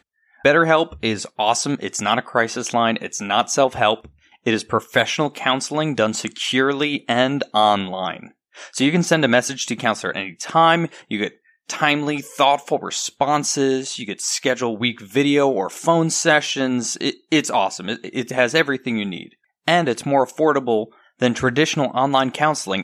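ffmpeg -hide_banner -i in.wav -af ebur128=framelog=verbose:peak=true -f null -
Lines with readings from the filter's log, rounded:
Integrated loudness:
  I:         -19.6 LUFS
  Threshold: -29.8 LUFS
Loudness range:
  LRA:         1.6 LU
  Threshold: -39.9 LUFS
  LRA low:   -20.7 LUFS
  LRA high:  -19.1 LUFS
True peak:
  Peak:       -2.1 dBFS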